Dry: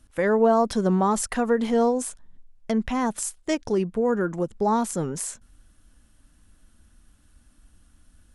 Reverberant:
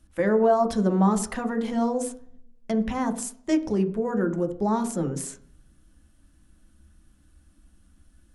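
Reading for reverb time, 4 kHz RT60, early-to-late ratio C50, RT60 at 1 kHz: 0.60 s, 0.60 s, 13.0 dB, 0.55 s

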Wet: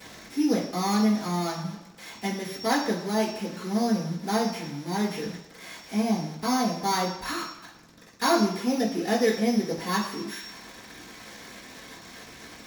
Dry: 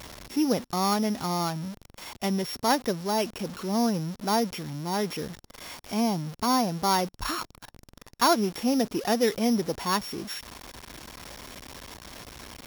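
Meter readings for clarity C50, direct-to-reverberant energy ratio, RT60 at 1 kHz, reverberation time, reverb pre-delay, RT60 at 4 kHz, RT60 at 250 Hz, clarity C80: 6.5 dB, -12.0 dB, 1.0 s, 0.95 s, 3 ms, 0.95 s, 0.90 s, 9.0 dB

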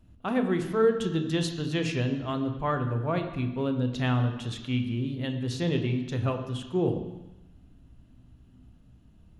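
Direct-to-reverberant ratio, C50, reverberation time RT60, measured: 5.5 dB, 8.5 dB, 1.0 s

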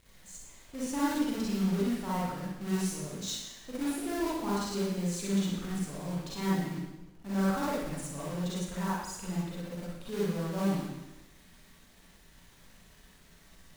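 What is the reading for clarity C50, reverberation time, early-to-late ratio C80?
-3.5 dB, 1.0 s, 2.0 dB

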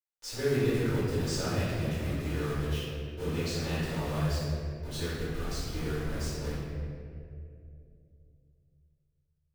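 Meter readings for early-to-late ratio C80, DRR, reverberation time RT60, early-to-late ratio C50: -1.0 dB, -14.0 dB, 2.5 s, -3.5 dB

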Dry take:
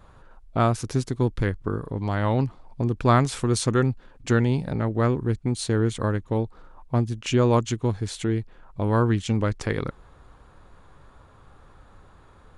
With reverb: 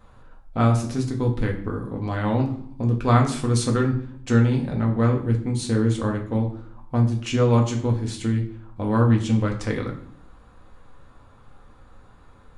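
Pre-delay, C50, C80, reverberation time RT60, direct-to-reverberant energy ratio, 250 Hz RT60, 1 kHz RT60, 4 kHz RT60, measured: 4 ms, 9.5 dB, 13.0 dB, 0.60 s, 0.5 dB, 0.85 s, 0.55 s, 0.45 s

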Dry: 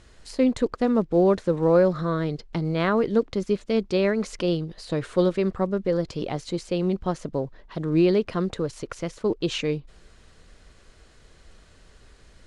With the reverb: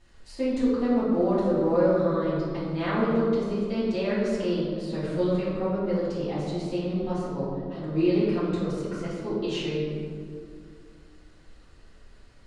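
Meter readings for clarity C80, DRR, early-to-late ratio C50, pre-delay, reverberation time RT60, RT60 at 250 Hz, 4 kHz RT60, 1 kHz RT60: 1.0 dB, -12.5 dB, -1.0 dB, 3 ms, 2.2 s, 3.0 s, 1.1 s, 2.0 s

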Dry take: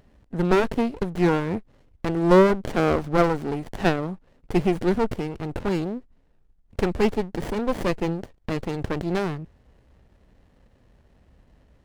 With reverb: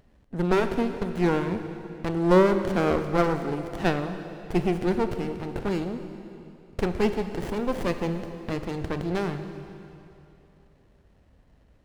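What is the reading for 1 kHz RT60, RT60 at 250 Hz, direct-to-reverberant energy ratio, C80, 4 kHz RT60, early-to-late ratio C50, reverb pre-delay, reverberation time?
2.8 s, 2.9 s, 8.0 dB, 9.5 dB, 2.6 s, 8.5 dB, 22 ms, 2.9 s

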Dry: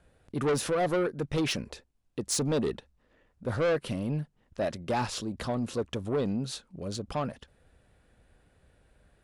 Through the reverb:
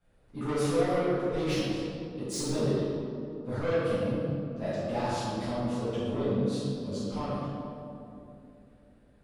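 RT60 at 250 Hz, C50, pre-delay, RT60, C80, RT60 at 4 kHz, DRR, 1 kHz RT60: 3.9 s, -4.0 dB, 7 ms, 2.8 s, -1.5 dB, 1.4 s, -15.5 dB, 2.4 s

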